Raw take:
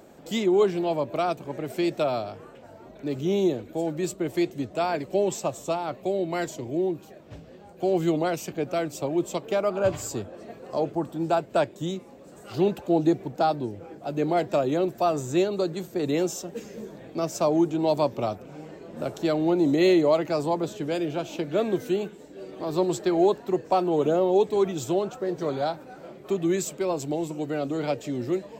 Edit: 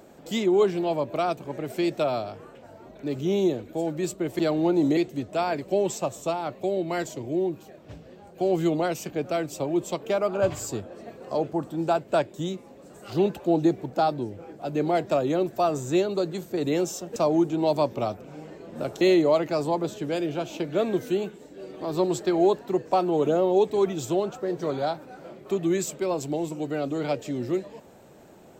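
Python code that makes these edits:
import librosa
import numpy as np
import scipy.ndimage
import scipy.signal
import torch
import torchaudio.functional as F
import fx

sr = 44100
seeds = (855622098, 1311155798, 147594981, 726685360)

y = fx.edit(x, sr, fx.cut(start_s=16.58, length_s=0.79),
    fx.move(start_s=19.22, length_s=0.58, to_s=4.39), tone=tone)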